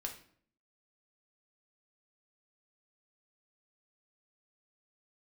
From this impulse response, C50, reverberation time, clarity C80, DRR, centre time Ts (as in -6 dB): 9.5 dB, 0.55 s, 13.5 dB, 1.5 dB, 16 ms